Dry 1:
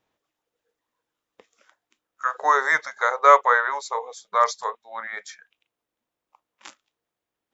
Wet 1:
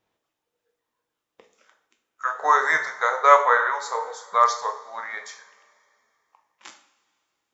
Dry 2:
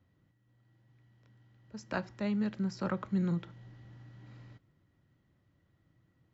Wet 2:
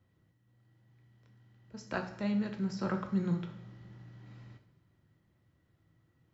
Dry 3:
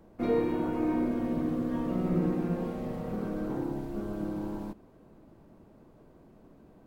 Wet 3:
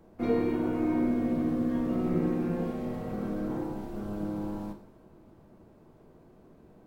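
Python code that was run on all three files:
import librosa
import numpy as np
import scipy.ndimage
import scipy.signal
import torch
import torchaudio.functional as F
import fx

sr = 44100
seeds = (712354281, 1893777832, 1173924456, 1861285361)

y = fx.rev_double_slope(x, sr, seeds[0], early_s=0.54, late_s=2.6, knee_db=-18, drr_db=4.5)
y = F.gain(torch.from_numpy(y), -1.0).numpy()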